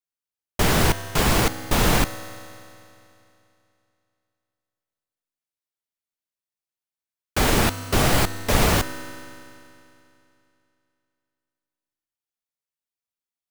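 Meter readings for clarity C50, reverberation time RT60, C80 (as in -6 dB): 12.5 dB, 2.8 s, 13.5 dB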